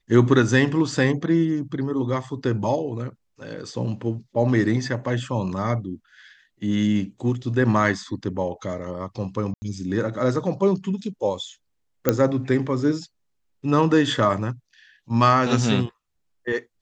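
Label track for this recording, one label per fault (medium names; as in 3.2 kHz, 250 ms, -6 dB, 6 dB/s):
9.540000	9.620000	dropout 80 ms
12.090000	12.090000	pop -4 dBFS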